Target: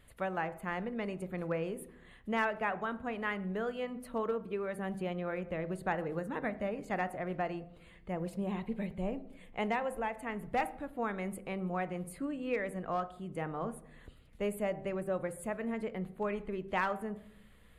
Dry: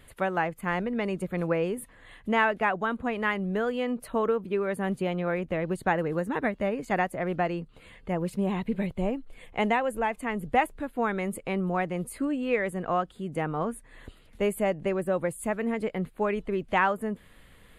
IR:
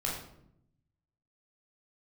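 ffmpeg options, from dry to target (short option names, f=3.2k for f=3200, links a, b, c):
-filter_complex "[0:a]bandreject=f=129.3:t=h:w=4,bandreject=f=258.6:t=h:w=4,bandreject=f=387.9:t=h:w=4,bandreject=f=517.2:t=h:w=4,bandreject=f=646.5:t=h:w=4,bandreject=f=775.8:t=h:w=4,aeval=exprs='clip(val(0),-1,0.119)':c=same,aeval=exprs='val(0)+0.001*(sin(2*PI*60*n/s)+sin(2*PI*2*60*n/s)/2+sin(2*PI*3*60*n/s)/3+sin(2*PI*4*60*n/s)/4+sin(2*PI*5*60*n/s)/5)':c=same,asplit=2[a][b];[1:a]atrim=start_sample=2205,highshelf=f=4.2k:g=-11[c];[b][c]afir=irnorm=-1:irlink=0,volume=-15dB[d];[a][d]amix=inputs=2:normalize=0,volume=-9dB"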